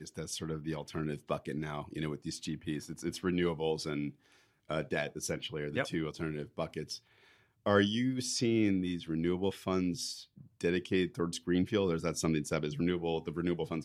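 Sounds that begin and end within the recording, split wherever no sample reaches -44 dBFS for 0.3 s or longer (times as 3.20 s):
4.70–6.97 s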